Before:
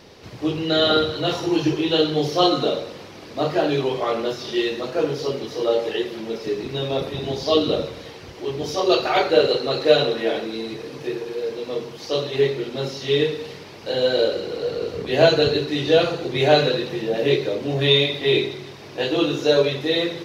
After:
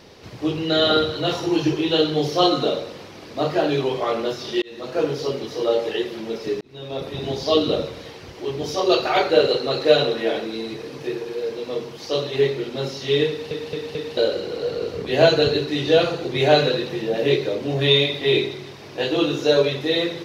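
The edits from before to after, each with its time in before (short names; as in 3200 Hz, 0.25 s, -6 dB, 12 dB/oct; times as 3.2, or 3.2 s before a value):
4.62–4.97 fade in
6.61–7.25 fade in
13.29 stutter in place 0.22 s, 4 plays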